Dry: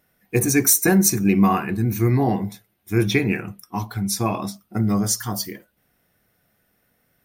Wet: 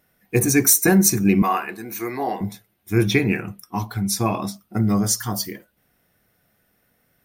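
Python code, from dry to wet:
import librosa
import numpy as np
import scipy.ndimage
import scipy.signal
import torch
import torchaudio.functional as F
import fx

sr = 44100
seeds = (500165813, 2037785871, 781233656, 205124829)

y = fx.highpass(x, sr, hz=500.0, slope=12, at=(1.42, 2.41))
y = F.gain(torch.from_numpy(y), 1.0).numpy()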